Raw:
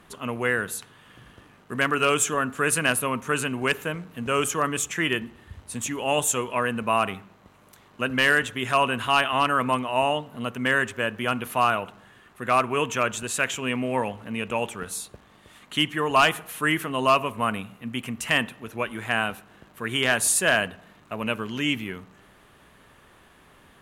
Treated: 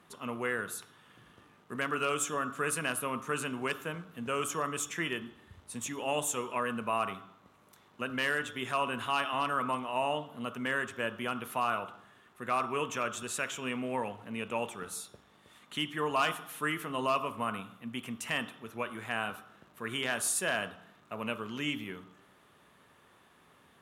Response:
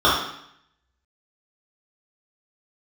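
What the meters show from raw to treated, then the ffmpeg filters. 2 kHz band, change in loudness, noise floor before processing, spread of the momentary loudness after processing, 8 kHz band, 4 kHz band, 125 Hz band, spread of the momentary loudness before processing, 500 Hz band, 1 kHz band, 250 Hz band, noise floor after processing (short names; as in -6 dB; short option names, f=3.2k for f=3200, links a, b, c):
-10.0 dB, -9.5 dB, -55 dBFS, 10 LU, -9.0 dB, -10.0 dB, -10.5 dB, 13 LU, -9.0 dB, -8.5 dB, -8.5 dB, -63 dBFS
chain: -filter_complex "[0:a]highpass=92,alimiter=limit=-13dB:level=0:latency=1:release=181,asplit=2[a][b];[1:a]atrim=start_sample=2205,highshelf=f=3.7k:g=9[c];[b][c]afir=irnorm=-1:irlink=0,volume=-34dB[d];[a][d]amix=inputs=2:normalize=0,volume=-8dB"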